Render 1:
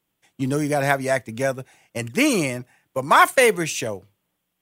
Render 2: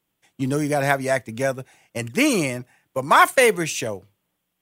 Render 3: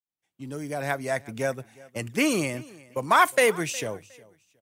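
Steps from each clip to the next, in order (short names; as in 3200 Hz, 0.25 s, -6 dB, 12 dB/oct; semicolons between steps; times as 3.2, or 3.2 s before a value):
nothing audible
opening faded in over 1.39 s; feedback echo 0.362 s, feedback 24%, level -22 dB; gain -4.5 dB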